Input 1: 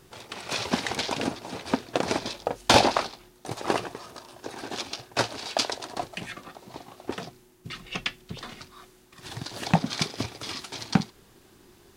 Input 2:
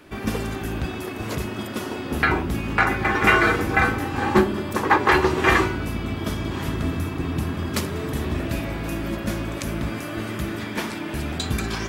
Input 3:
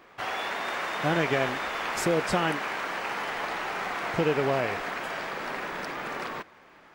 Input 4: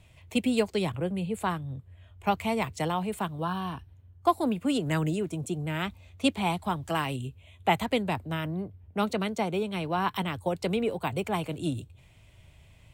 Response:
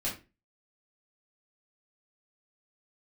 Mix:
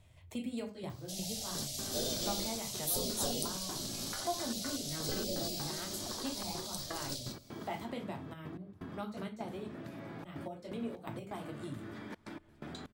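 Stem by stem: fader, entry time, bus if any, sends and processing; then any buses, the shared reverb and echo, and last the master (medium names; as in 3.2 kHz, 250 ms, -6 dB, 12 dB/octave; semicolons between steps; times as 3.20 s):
-17.0 dB, 0.50 s, bus A, no send, formants replaced by sine waves; Bessel low-pass 560 Hz
-8.5 dB, 1.35 s, bus A, no send, treble shelf 5.1 kHz -10.5 dB; compression, threshold -23 dBFS, peak gain reduction 11.5 dB; high-pass 120 Hz 24 dB/octave
+3.0 dB, 0.90 s, no bus, send -3.5 dB, Chebyshev band-stop 380–4300 Hz, order 3; spectral gate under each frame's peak -15 dB weak; treble shelf 7.6 kHz +9.5 dB
-6.5 dB, 0.00 s, muted 9.68–10.24 s, bus A, send -15.5 dB, none
bus A: 0.0 dB, trance gate "xxxxxx.x..xx.x.x" 126 bpm -24 dB; compression 6:1, threshold -42 dBFS, peak gain reduction 18 dB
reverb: on, RT60 0.30 s, pre-delay 3 ms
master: peaking EQ 2.6 kHz -7 dB 0.4 oct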